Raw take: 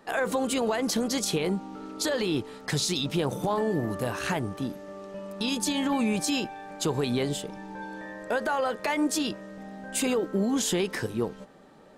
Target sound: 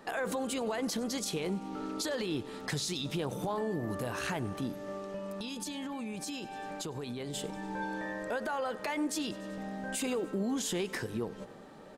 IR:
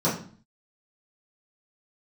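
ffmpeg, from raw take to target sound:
-filter_complex "[0:a]aecho=1:1:96|192|288|384:0.0794|0.0453|0.0258|0.0147,alimiter=level_in=3.5dB:limit=-24dB:level=0:latency=1:release=242,volume=-3.5dB,asettb=1/sr,asplit=3[a][b][c];[a]atrim=end=4.964[d];[b]atrim=start=4.96:end=7.34,asetpts=PTS-STARTPTS,afade=t=in:d=0.004:c=qsin,afade=t=out:st=2.376:d=0.004:c=qsin,acompressor=threshold=-38dB:ratio=6[e];[c]atrim=start=7.336[f];[d][e]acrossfade=d=0.004:c1=hsin:c2=qsin[g];[g][f]acrossfade=d=0.004:c1=qsin:c2=hsin,volume=2dB"

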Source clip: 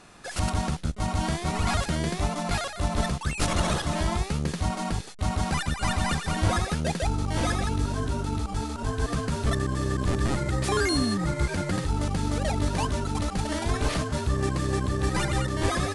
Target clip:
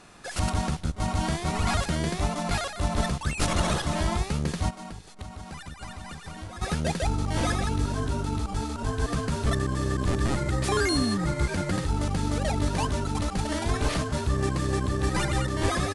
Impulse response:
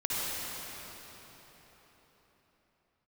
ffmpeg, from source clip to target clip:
-filter_complex "[0:a]asplit=2[a][b];[b]adelay=396.5,volume=-22dB,highshelf=f=4k:g=-8.92[c];[a][c]amix=inputs=2:normalize=0,asplit=3[d][e][f];[d]afade=t=out:st=4.69:d=0.02[g];[e]acompressor=threshold=-36dB:ratio=10,afade=t=in:st=4.69:d=0.02,afade=t=out:st=6.61:d=0.02[h];[f]afade=t=in:st=6.61:d=0.02[i];[g][h][i]amix=inputs=3:normalize=0"

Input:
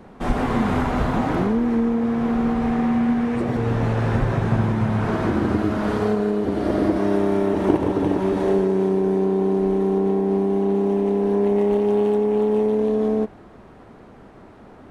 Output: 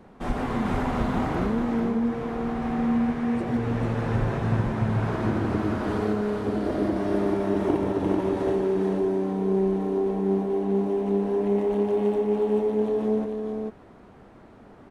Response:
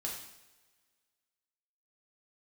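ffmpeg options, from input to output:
-af "aecho=1:1:442:0.631,volume=-6dB"

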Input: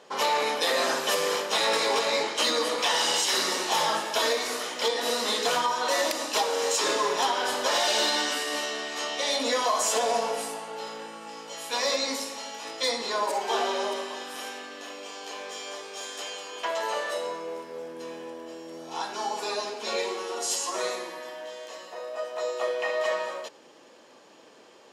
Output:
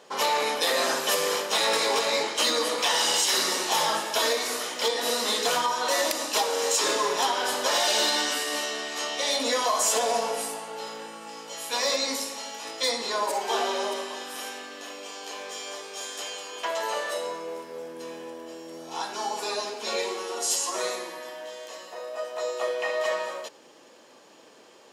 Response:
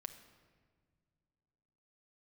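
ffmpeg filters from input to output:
-af "highshelf=f=8.2k:g=7.5"

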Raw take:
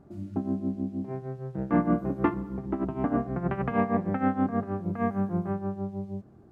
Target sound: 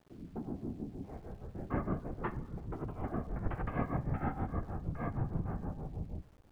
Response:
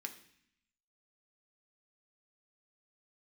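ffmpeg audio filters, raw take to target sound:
-filter_complex "[0:a]aresample=11025,aresample=44100,asplit=2[a][b];[1:a]atrim=start_sample=2205,afade=t=out:st=0.21:d=0.01,atrim=end_sample=9702,asetrate=38367,aresample=44100[c];[b][c]afir=irnorm=-1:irlink=0,volume=-6.5dB[d];[a][d]amix=inputs=2:normalize=0,afftfilt=real='hypot(re,im)*cos(2*PI*random(0))':imag='hypot(re,im)*sin(2*PI*random(1))':win_size=512:overlap=0.75,asubboost=boost=6.5:cutoff=90,aeval=exprs='val(0)*gte(abs(val(0)),0.00168)':c=same,volume=-5.5dB"

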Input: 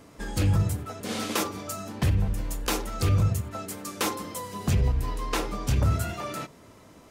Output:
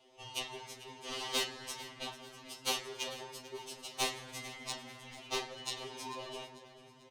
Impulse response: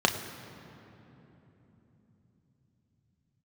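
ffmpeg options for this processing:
-filter_complex "[0:a]highpass=570,aderivative,afreqshift=-330,aeval=exprs='val(0)*sin(2*PI*1400*n/s)':c=same,adynamicsmooth=sensitivity=4.5:basefreq=2.6k,aecho=1:1:443|886|1329|1772:0.15|0.0673|0.0303|0.0136,asplit=2[a][b];[1:a]atrim=start_sample=2205,lowpass=8.1k,lowshelf=f=130:g=-5[c];[b][c]afir=irnorm=-1:irlink=0,volume=-13dB[d];[a][d]amix=inputs=2:normalize=0,afftfilt=real='re*2.45*eq(mod(b,6),0)':imag='im*2.45*eq(mod(b,6),0)':win_size=2048:overlap=0.75,volume=10.5dB"

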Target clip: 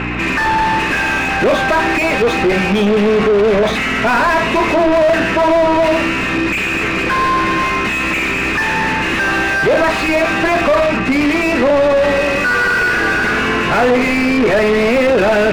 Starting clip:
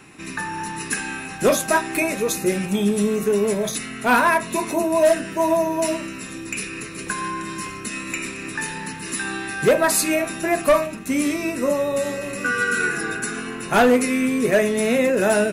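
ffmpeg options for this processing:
-filter_complex "[0:a]aeval=exprs='val(0)+0.02*(sin(2*PI*60*n/s)+sin(2*PI*2*60*n/s)/2+sin(2*PI*3*60*n/s)/3+sin(2*PI*4*60*n/s)/4+sin(2*PI*5*60*n/s)/5)':c=same,aeval=exprs='0.355*(cos(1*acos(clip(val(0)/0.355,-1,1)))-cos(1*PI/2))+0.0708*(cos(5*acos(clip(val(0)/0.355,-1,1)))-cos(5*PI/2))':c=same,lowpass=f=2.7k:t=q:w=1.9,asplit=2[a][b];[b]highpass=f=720:p=1,volume=31dB,asoftclip=type=tanh:threshold=-4.5dB[c];[a][c]amix=inputs=2:normalize=0,lowpass=f=1.1k:p=1,volume=-6dB"

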